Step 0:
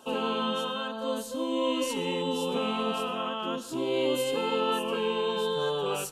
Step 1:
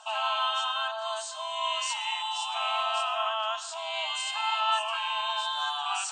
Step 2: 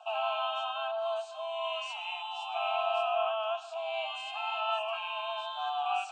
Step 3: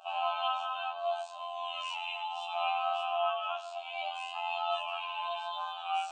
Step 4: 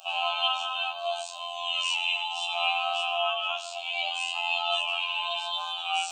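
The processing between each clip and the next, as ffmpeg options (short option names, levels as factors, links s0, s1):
-af "afftfilt=real='re*between(b*sr/4096,610,8800)':imag='im*between(b*sr/4096,610,8800)':win_size=4096:overlap=0.75,areverse,acompressor=mode=upward:threshold=0.0141:ratio=2.5,areverse,volume=1.68"
-filter_complex "[0:a]asplit=3[s0][s1][s2];[s0]bandpass=f=730:t=q:w=8,volume=1[s3];[s1]bandpass=f=1090:t=q:w=8,volume=0.501[s4];[s2]bandpass=f=2440:t=q:w=8,volume=0.355[s5];[s3][s4][s5]amix=inputs=3:normalize=0,equalizer=f=1100:t=o:w=0.23:g=-9.5,volume=2.66"
-af "afftfilt=real='hypot(re,im)*cos(PI*b)':imag='0':win_size=2048:overlap=0.75,flanger=delay=18:depth=4.2:speed=0.34,volume=2"
-af "aexciter=amount=4.5:drive=3.8:freq=2400,volume=1.19"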